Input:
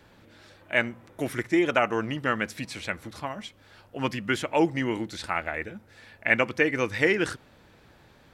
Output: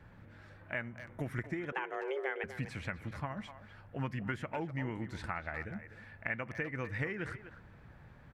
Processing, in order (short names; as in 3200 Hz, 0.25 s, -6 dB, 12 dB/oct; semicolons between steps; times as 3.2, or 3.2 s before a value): compressor 4:1, threshold -32 dBFS, peak gain reduction 14 dB; EQ curve 150 Hz 0 dB, 330 Hz -11 dB, 1800 Hz -6 dB, 3700 Hz -19 dB; 1.72–2.44 frequency shift +260 Hz; speakerphone echo 0.25 s, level -11 dB; gain +4 dB